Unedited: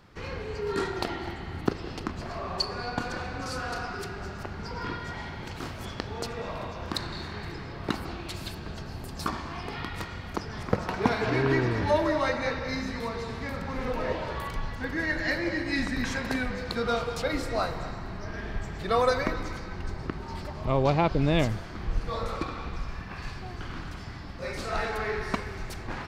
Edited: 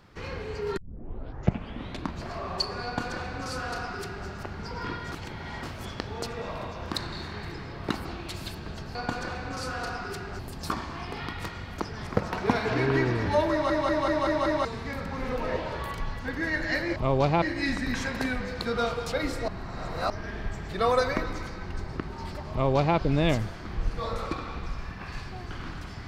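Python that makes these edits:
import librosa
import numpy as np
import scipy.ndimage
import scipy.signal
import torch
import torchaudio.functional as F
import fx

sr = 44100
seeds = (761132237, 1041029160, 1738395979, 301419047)

y = fx.edit(x, sr, fx.tape_start(start_s=0.77, length_s=1.48),
    fx.duplicate(start_s=2.84, length_s=1.44, to_s=8.95),
    fx.reverse_span(start_s=5.12, length_s=0.51),
    fx.stutter_over(start_s=12.07, slice_s=0.19, count=6),
    fx.reverse_span(start_s=17.58, length_s=0.62),
    fx.duplicate(start_s=20.61, length_s=0.46, to_s=15.52), tone=tone)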